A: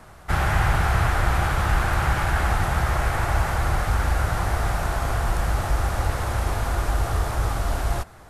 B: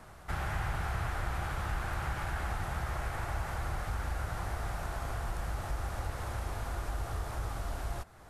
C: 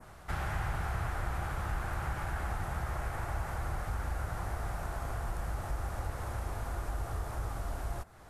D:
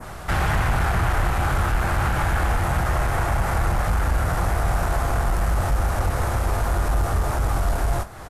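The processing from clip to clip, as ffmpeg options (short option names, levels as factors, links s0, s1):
-af "acompressor=threshold=0.01:ratio=1.5,volume=0.531"
-af "adynamicequalizer=threshold=0.00158:dfrequency=3600:dqfactor=0.76:tfrequency=3600:tqfactor=0.76:attack=5:release=100:ratio=0.375:range=2.5:mode=cutabove:tftype=bell"
-af "aeval=exprs='0.075*sin(PI/2*2*val(0)/0.075)':c=same,aecho=1:1:23|56:0.316|0.141,volume=2" -ar 44100 -c:a sbc -b:a 128k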